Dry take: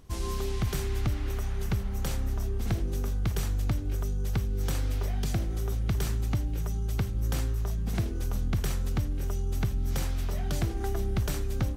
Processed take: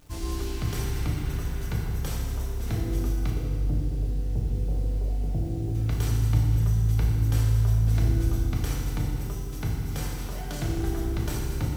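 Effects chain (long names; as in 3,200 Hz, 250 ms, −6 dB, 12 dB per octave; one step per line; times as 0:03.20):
0:03.30–0:05.75: Chebyshev low-pass filter 610 Hz, order 3
bit reduction 9 bits
feedback delay network reverb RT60 2.1 s, low-frequency decay 1.4×, high-frequency decay 0.8×, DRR −2.5 dB
level −3 dB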